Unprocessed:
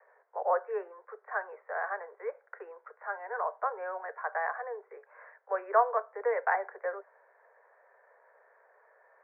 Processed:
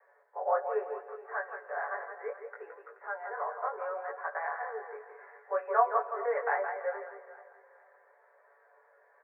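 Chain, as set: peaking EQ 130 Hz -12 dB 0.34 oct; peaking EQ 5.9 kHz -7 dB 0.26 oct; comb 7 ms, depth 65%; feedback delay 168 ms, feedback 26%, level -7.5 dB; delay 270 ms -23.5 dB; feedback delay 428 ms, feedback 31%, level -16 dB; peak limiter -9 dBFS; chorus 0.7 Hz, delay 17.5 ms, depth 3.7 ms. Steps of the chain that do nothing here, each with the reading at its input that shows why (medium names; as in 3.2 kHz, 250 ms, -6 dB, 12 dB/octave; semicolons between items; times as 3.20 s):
peaking EQ 130 Hz: input has nothing below 340 Hz; peaking EQ 5.9 kHz: input has nothing above 2.2 kHz; peak limiter -9 dBFS: peak at its input -10.5 dBFS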